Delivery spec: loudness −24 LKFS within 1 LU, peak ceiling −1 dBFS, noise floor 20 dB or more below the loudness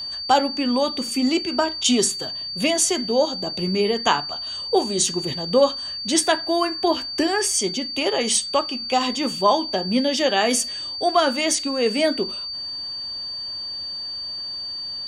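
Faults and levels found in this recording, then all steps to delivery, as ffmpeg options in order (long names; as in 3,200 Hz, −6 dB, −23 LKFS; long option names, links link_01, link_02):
interfering tone 4,600 Hz; level of the tone −28 dBFS; integrated loudness −21.5 LKFS; sample peak −4.5 dBFS; target loudness −24.0 LKFS
→ -af "bandreject=frequency=4600:width=30"
-af "volume=-2.5dB"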